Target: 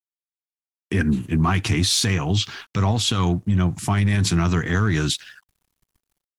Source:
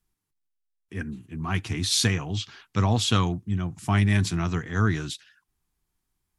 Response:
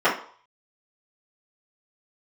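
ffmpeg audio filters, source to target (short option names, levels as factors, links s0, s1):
-filter_complex "[0:a]dynaudnorm=f=200:g=3:m=5.62,asplit=2[s0][s1];[s1]volume=5.01,asoftclip=hard,volume=0.2,volume=0.447[s2];[s0][s2]amix=inputs=2:normalize=0,alimiter=limit=0.266:level=0:latency=1:release=144,aeval=exprs='sgn(val(0))*max(abs(val(0))-0.00188,0)':c=same"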